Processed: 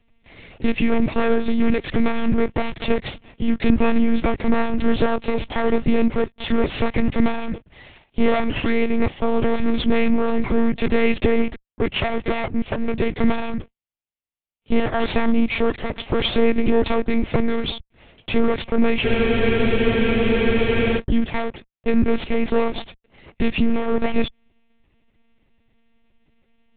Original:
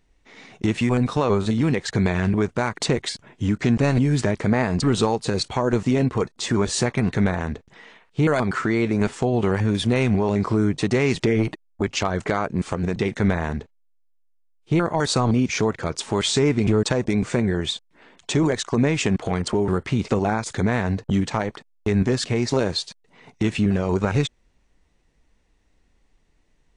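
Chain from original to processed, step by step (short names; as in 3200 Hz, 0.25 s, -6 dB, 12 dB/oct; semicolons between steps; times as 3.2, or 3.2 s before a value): minimum comb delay 0.37 ms; monotone LPC vocoder at 8 kHz 230 Hz; spectral freeze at 19.06, 1.93 s; gain +4 dB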